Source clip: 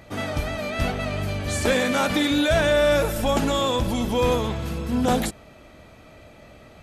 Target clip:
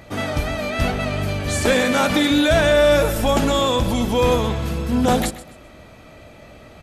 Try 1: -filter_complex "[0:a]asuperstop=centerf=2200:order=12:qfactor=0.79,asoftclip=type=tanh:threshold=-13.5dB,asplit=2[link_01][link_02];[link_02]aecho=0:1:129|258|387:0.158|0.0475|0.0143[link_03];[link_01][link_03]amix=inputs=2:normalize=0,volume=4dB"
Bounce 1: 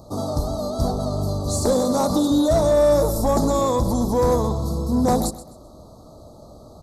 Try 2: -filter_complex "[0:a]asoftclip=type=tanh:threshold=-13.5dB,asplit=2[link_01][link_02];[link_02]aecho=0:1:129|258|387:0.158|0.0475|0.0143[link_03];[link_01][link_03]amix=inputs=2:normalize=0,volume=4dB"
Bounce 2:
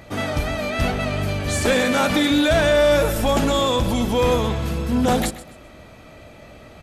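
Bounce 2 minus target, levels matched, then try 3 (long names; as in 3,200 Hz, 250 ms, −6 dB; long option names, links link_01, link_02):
soft clipping: distortion +16 dB
-filter_complex "[0:a]asoftclip=type=tanh:threshold=-4.5dB,asplit=2[link_01][link_02];[link_02]aecho=0:1:129|258|387:0.158|0.0475|0.0143[link_03];[link_01][link_03]amix=inputs=2:normalize=0,volume=4dB"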